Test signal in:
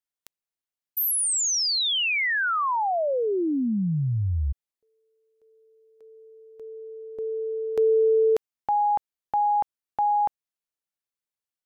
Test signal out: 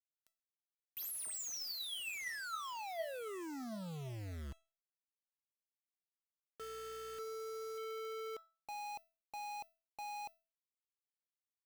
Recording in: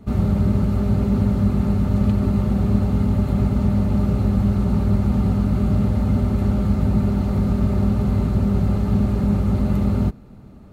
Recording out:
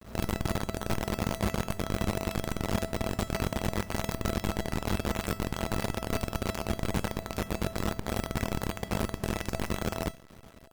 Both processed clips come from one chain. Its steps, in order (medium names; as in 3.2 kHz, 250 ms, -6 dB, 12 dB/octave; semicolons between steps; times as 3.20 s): hum 60 Hz, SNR 34 dB; companded quantiser 2-bit; feedback comb 660 Hz, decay 0.33 s, mix 80%; trim -6 dB